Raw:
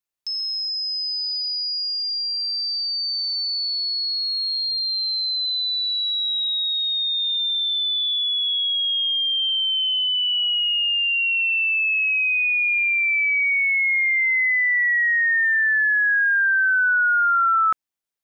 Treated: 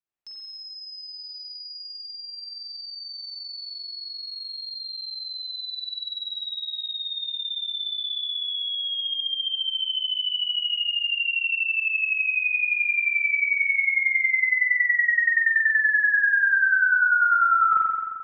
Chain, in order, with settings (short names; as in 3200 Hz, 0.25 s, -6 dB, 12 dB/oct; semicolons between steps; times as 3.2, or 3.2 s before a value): high shelf 4100 Hz -11.5 dB; spring tank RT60 1.6 s, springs 43 ms, chirp 60 ms, DRR -5.5 dB; gain -6.5 dB